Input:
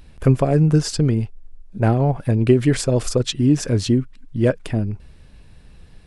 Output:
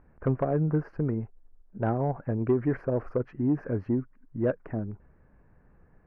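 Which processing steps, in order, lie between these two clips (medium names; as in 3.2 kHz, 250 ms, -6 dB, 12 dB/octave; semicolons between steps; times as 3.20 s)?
inverse Chebyshev low-pass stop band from 3.3 kHz, stop band 40 dB; bass shelf 150 Hz -10 dB; saturation -9 dBFS, distortion -21 dB; trim -6 dB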